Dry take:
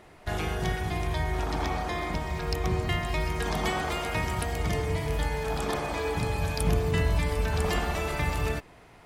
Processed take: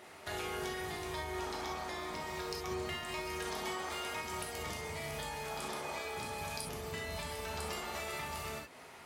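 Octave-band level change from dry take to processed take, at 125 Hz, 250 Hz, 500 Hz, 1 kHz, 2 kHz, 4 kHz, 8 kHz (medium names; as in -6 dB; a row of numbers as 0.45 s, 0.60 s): -19.0 dB, -12.0 dB, -9.5 dB, -8.0 dB, -8.0 dB, -5.5 dB, -4.0 dB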